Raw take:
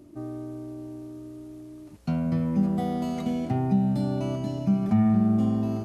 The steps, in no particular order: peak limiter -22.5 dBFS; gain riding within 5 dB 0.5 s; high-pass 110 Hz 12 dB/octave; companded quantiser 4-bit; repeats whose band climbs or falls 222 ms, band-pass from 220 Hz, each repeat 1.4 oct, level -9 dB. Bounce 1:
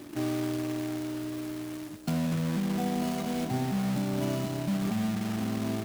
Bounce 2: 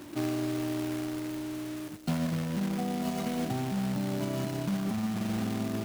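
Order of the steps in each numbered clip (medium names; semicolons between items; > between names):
high-pass > peak limiter > gain riding > companded quantiser > repeats whose band climbs or falls; high-pass > companded quantiser > repeats whose band climbs or falls > peak limiter > gain riding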